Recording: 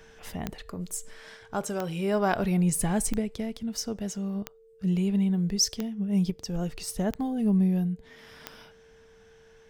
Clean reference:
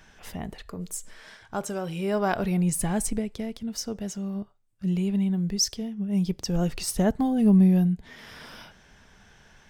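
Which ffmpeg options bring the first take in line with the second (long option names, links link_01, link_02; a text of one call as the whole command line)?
ffmpeg -i in.wav -af "adeclick=threshold=4,bandreject=frequency=450:width=30,asetnsamples=nb_out_samples=441:pad=0,asendcmd='6.3 volume volume 5.5dB',volume=0dB" out.wav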